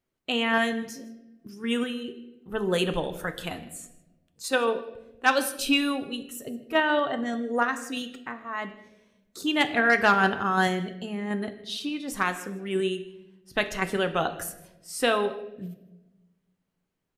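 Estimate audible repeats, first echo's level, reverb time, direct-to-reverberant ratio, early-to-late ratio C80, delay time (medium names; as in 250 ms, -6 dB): 1, -22.0 dB, 0.95 s, 7.5 dB, 14.0 dB, 157 ms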